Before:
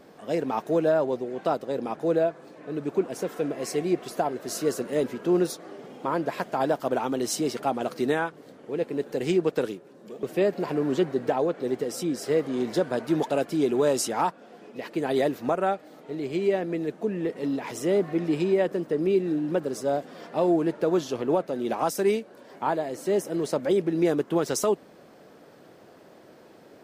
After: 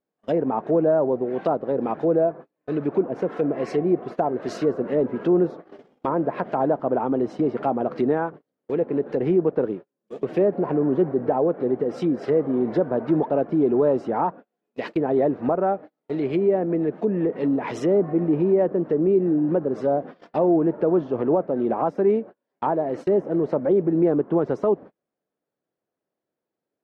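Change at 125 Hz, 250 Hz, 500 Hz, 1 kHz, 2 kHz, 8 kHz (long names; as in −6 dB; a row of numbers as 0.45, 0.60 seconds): +5.0 dB, +5.0 dB, +4.0 dB, +2.5 dB, −3.5 dB, below −15 dB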